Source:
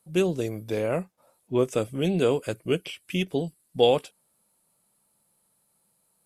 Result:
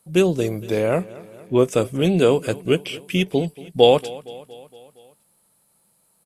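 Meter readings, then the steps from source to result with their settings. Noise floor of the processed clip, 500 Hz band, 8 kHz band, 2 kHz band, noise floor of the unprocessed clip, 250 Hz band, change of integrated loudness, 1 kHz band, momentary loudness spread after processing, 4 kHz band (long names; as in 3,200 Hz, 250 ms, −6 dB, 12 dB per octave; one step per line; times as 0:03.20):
−64 dBFS, +6.5 dB, +6.5 dB, +6.5 dB, −70 dBFS, +6.5 dB, +6.5 dB, +6.5 dB, 17 LU, +6.5 dB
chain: repeating echo 232 ms, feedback 60%, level −19.5 dB
level +6.5 dB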